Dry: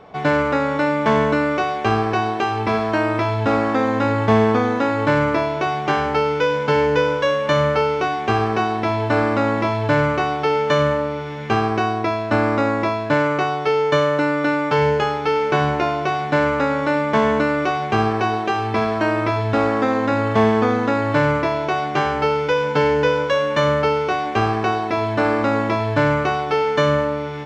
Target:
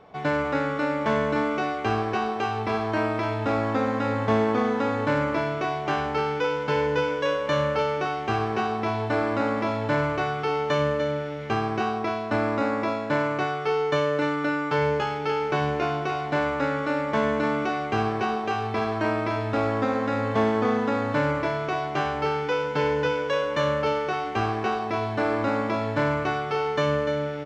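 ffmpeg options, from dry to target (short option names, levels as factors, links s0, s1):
-af "aecho=1:1:296:0.422,volume=0.447"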